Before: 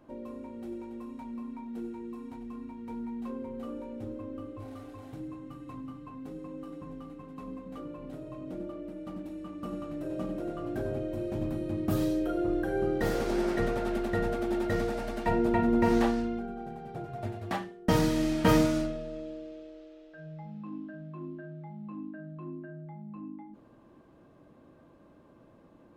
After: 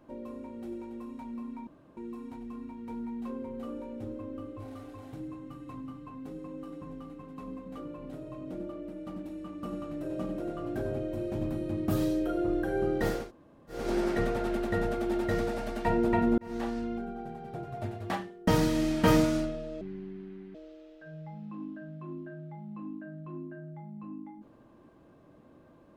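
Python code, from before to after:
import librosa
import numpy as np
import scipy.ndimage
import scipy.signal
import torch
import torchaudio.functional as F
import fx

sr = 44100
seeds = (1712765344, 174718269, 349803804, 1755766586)

y = fx.edit(x, sr, fx.room_tone_fill(start_s=1.67, length_s=0.3),
    fx.insert_room_tone(at_s=13.2, length_s=0.59, crossfade_s=0.24),
    fx.fade_in_span(start_s=15.79, length_s=0.63),
    fx.speed_span(start_s=19.22, length_s=0.45, speed=0.61), tone=tone)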